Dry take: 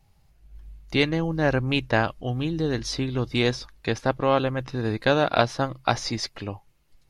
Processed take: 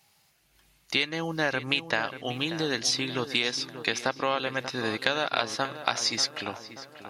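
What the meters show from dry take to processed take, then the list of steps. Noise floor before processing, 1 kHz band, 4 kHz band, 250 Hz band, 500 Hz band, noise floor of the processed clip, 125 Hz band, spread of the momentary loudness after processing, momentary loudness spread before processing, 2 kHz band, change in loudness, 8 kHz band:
-61 dBFS, -4.0 dB, +3.0 dB, -7.5 dB, -7.0 dB, -66 dBFS, -12.5 dB, 5 LU, 8 LU, 0.0 dB, -3.0 dB, +6.0 dB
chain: HPF 170 Hz 12 dB/oct; tilt shelf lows -7.5 dB; compressor 6:1, threshold -25 dBFS, peak gain reduction 11.5 dB; on a send: darkening echo 0.586 s, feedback 55%, low-pass 2300 Hz, level -11.5 dB; on the sum: gain +2.5 dB

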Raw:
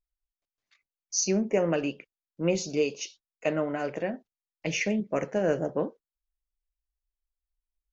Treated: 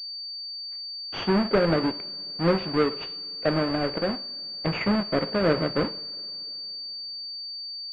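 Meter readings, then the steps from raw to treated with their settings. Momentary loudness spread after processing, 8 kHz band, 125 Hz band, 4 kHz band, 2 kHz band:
10 LU, n/a, +6.0 dB, +12.5 dB, +3.5 dB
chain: half-waves squared off; two-slope reverb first 0.56 s, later 3.6 s, from -18 dB, DRR 13.5 dB; pulse-width modulation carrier 4600 Hz

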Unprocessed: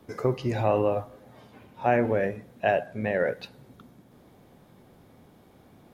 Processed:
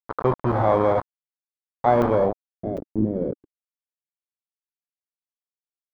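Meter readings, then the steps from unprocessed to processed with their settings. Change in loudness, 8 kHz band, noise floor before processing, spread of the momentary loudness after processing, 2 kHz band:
+4.0 dB, n/a, -56 dBFS, 13 LU, -5.0 dB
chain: FFT order left unsorted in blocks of 16 samples; in parallel at 0 dB: limiter -22 dBFS, peak gain reduction 11.5 dB; on the sum: bit-crush 4-bit; low-pass sweep 1100 Hz -> 300 Hz, 2.12–2.66; crackling interface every 0.75 s, samples 256, zero, from 0.52

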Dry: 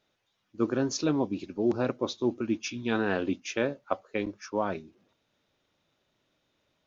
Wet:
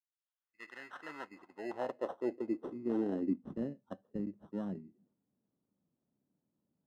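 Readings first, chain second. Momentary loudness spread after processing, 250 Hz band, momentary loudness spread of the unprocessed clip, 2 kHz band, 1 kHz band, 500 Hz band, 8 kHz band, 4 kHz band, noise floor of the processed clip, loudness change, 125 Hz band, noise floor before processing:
15 LU, -8.0 dB, 6 LU, -14.5 dB, -11.5 dB, -10.0 dB, n/a, under -20 dB, under -85 dBFS, -9.0 dB, -11.0 dB, -77 dBFS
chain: opening faded in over 2.09 s; sample-and-hold 19×; band-pass sweep 2800 Hz -> 200 Hz, 0.16–3.54

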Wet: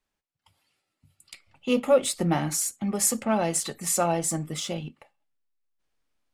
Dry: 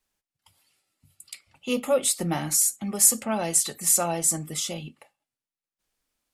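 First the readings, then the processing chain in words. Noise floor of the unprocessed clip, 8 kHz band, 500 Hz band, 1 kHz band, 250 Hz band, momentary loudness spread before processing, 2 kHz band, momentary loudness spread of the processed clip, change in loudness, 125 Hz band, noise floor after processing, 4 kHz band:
under -85 dBFS, -6.0 dB, +3.0 dB, +2.5 dB, +3.0 dB, 11 LU, +1.0 dB, 10 LU, -3.0 dB, +3.0 dB, -84 dBFS, -2.0 dB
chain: LPF 3000 Hz 6 dB/oct; in parallel at -7 dB: backlash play -33.5 dBFS

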